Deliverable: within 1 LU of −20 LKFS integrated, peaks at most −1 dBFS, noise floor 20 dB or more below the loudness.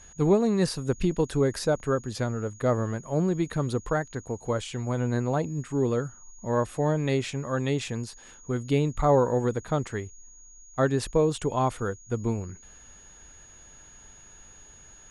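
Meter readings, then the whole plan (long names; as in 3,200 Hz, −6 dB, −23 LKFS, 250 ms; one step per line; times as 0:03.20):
interfering tone 6,700 Hz; level of the tone −50 dBFS; integrated loudness −27.5 LKFS; sample peak −11.5 dBFS; target loudness −20.0 LKFS
→ notch filter 6,700 Hz, Q 30
level +7.5 dB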